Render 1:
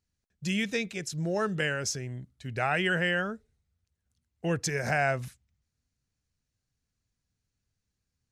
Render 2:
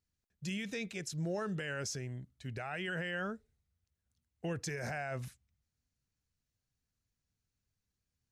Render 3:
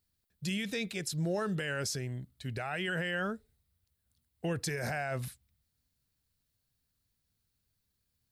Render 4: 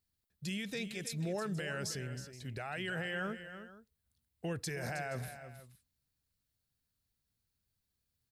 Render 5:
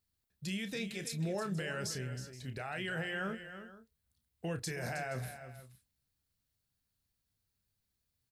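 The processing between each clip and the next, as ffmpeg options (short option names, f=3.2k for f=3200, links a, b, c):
-af "alimiter=level_in=1.5dB:limit=-24dB:level=0:latency=1:release=28,volume=-1.5dB,volume=-4.5dB"
-af "aexciter=amount=1.4:drive=4.9:freq=3.5k,volume=4dB"
-af "aecho=1:1:318|475:0.282|0.133,volume=-4.5dB"
-filter_complex "[0:a]asplit=2[a][b];[b]adelay=31,volume=-9.5dB[c];[a][c]amix=inputs=2:normalize=0"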